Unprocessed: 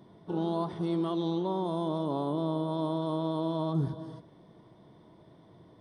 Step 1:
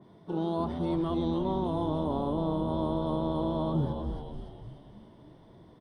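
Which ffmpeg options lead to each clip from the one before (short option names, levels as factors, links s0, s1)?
-filter_complex "[0:a]asplit=2[s0][s1];[s1]asplit=6[s2][s3][s4][s5][s6][s7];[s2]adelay=294,afreqshift=-90,volume=0.501[s8];[s3]adelay=588,afreqshift=-180,volume=0.251[s9];[s4]adelay=882,afreqshift=-270,volume=0.126[s10];[s5]adelay=1176,afreqshift=-360,volume=0.0624[s11];[s6]adelay=1470,afreqshift=-450,volume=0.0313[s12];[s7]adelay=1764,afreqshift=-540,volume=0.0157[s13];[s8][s9][s10][s11][s12][s13]amix=inputs=6:normalize=0[s14];[s0][s14]amix=inputs=2:normalize=0,adynamicequalizer=threshold=0.00251:dfrequency=3000:dqfactor=0.7:tfrequency=3000:tqfactor=0.7:attack=5:release=100:ratio=0.375:range=2.5:mode=cutabove:tftype=highshelf"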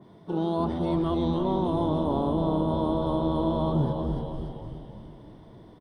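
-filter_complex "[0:a]asplit=2[s0][s1];[s1]adelay=331,lowpass=f=2000:p=1,volume=0.398,asplit=2[s2][s3];[s3]adelay=331,lowpass=f=2000:p=1,volume=0.45,asplit=2[s4][s5];[s5]adelay=331,lowpass=f=2000:p=1,volume=0.45,asplit=2[s6][s7];[s7]adelay=331,lowpass=f=2000:p=1,volume=0.45,asplit=2[s8][s9];[s9]adelay=331,lowpass=f=2000:p=1,volume=0.45[s10];[s0][s2][s4][s6][s8][s10]amix=inputs=6:normalize=0,volume=1.5"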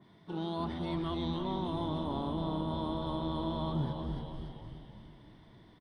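-af "equalizer=f=500:t=o:w=1:g=-6,equalizer=f=2000:t=o:w=1:g=8,equalizer=f=4000:t=o:w=1:g=6,volume=0.422"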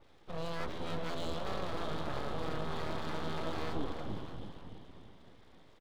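-af "aeval=exprs='abs(val(0))':c=same"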